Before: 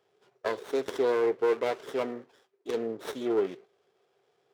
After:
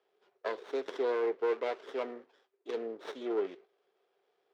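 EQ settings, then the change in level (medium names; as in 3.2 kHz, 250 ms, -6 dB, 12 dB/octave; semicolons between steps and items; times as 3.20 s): three-band isolator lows -22 dB, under 240 Hz, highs -17 dB, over 5.5 kHz; -4.5 dB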